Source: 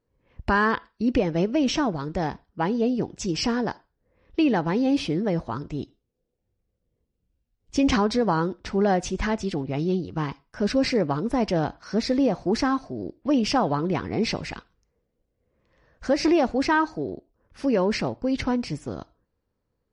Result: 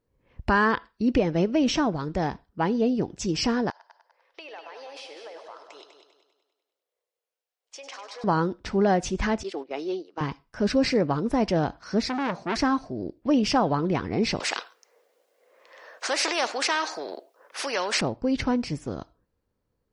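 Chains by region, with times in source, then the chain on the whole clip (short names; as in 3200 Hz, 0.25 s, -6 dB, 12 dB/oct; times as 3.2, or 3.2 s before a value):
3.7–8.24 inverse Chebyshev high-pass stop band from 220 Hz, stop band 50 dB + compressor 5:1, threshold -40 dBFS + multi-head echo 99 ms, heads first and second, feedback 45%, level -10 dB
9.43–10.21 HPF 360 Hz 24 dB/oct + gate -37 dBFS, range -10 dB
12.09–12.56 HPF 160 Hz + comb 4.9 ms, depth 41% + core saturation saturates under 1600 Hz
14.4–18.01 HPF 510 Hz 24 dB/oct + spectral compressor 2:1
whole clip: dry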